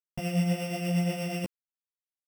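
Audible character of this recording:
a buzz of ramps at a fixed pitch in blocks of 16 samples
tremolo triangle 8.4 Hz, depth 50%
a quantiser's noise floor 12 bits, dither none
a shimmering, thickened sound

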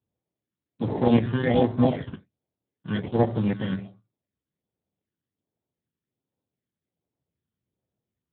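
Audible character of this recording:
aliases and images of a low sample rate 1,300 Hz, jitter 0%
phaser sweep stages 12, 1.3 Hz, lowest notch 690–3,000 Hz
Speex

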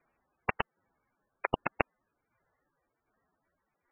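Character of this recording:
aliases and images of a low sample rate 3,800 Hz, jitter 0%
tremolo saw down 1.3 Hz, depth 55%
MP3

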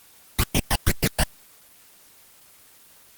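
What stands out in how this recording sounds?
phaser sweep stages 12, 2.3 Hz, lowest notch 380–1,500 Hz
a quantiser's noise floor 10 bits, dither triangular
Opus

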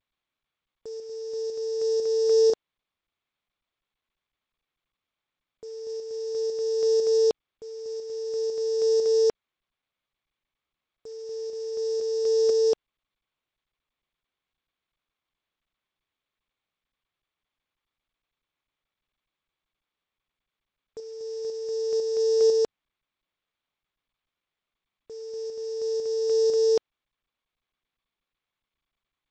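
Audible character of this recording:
a buzz of ramps at a fixed pitch in blocks of 8 samples
tremolo saw up 2 Hz, depth 45%
a quantiser's noise floor 10 bits, dither none
G.722

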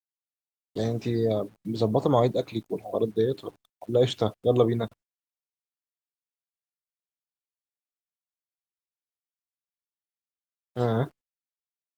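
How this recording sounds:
a quantiser's noise floor 10 bits, dither none
Opus

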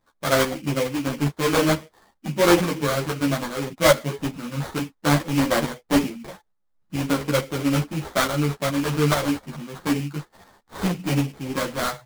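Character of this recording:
aliases and images of a low sample rate 2,700 Hz, jitter 20%
tremolo saw up 2.3 Hz, depth 50%
a shimmering, thickened sound

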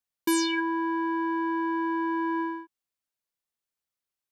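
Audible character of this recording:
background noise floor −90 dBFS
spectral slope −6.0 dB per octave

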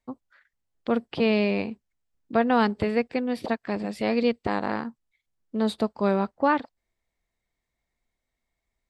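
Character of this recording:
background noise floor −83 dBFS
spectral slope −4.5 dB per octave

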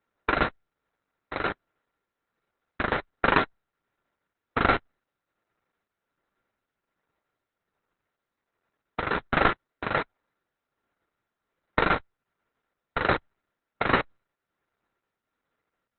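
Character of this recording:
a buzz of ramps at a fixed pitch in blocks of 32 samples
tremolo triangle 1.3 Hz, depth 70%
aliases and images of a low sample rate 3,200 Hz, jitter 20%
Opus

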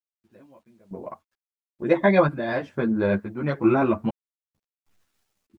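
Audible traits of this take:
sample-and-hold tremolo 2.2 Hz, depth 100%
a quantiser's noise floor 12 bits, dither none
a shimmering, thickened sound

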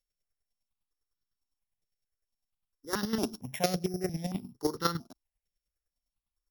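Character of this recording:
a buzz of ramps at a fixed pitch in blocks of 8 samples
chopped level 9.9 Hz, depth 65%, duty 20%
notches that jump at a steady rate 4.4 Hz 270–2,400 Hz

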